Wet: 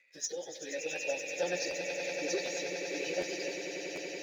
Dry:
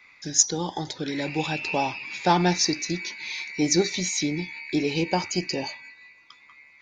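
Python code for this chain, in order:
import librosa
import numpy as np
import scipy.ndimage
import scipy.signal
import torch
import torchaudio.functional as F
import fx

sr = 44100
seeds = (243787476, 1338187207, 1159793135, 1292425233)

y = fx.vowel_filter(x, sr, vowel='e')
y = fx.bass_treble(y, sr, bass_db=-2, treble_db=13)
y = fx.stretch_vocoder_free(y, sr, factor=0.62)
y = fx.leveller(y, sr, passes=1)
y = fx.echo_swell(y, sr, ms=95, loudest=8, wet_db=-11.0)
y = fx.buffer_crackle(y, sr, first_s=0.95, period_s=0.75, block=512, kind='repeat')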